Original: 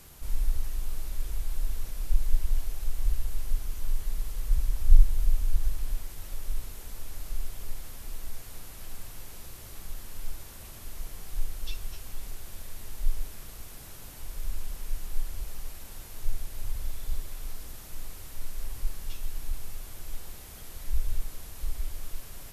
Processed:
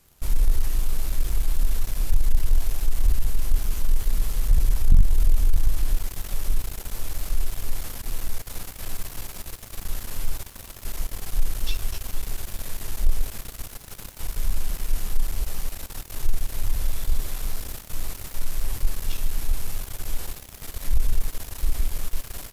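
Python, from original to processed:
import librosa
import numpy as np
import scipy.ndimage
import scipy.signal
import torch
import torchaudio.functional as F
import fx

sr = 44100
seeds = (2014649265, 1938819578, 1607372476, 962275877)

y = fx.leveller(x, sr, passes=3)
y = F.gain(torch.from_numpy(y), -2.5).numpy()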